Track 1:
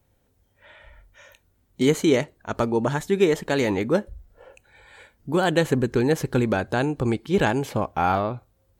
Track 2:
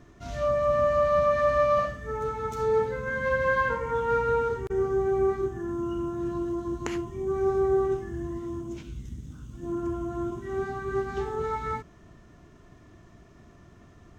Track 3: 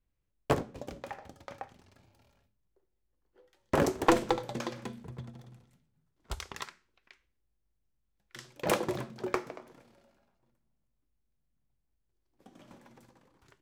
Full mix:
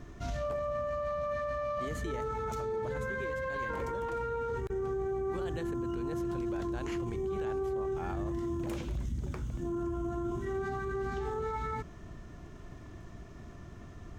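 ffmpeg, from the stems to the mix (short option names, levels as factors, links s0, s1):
-filter_complex "[0:a]volume=0.178[s0];[1:a]lowshelf=f=78:g=7.5,acompressor=threshold=0.0631:ratio=6,volume=1.33[s1];[2:a]volume=0.251,asplit=3[s2][s3][s4];[s2]atrim=end=4.28,asetpts=PTS-STARTPTS,afade=t=out:st=4.276:d=0.004:c=hsin[s5];[s3]atrim=start=4.28:end=4.78,asetpts=PTS-STARTPTS,volume=0[s6];[s4]atrim=start=4.78,asetpts=PTS-STARTPTS,afade=t=in:d=0.004:c=hsin[s7];[s5][s6][s7]concat=n=3:v=0:a=1[s8];[s0][s1][s8]amix=inputs=3:normalize=0,alimiter=level_in=1.58:limit=0.0631:level=0:latency=1:release=29,volume=0.631"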